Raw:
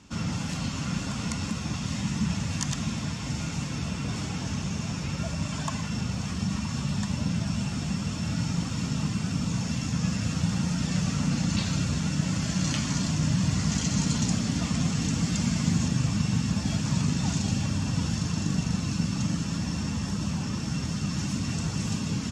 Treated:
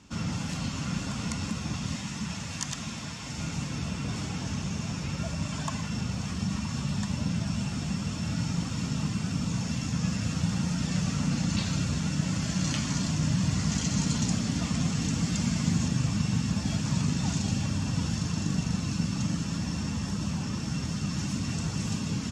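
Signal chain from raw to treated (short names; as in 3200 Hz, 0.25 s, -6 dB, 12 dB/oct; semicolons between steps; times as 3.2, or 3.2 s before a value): 1.96–3.38 low shelf 380 Hz -7.5 dB; gain -1.5 dB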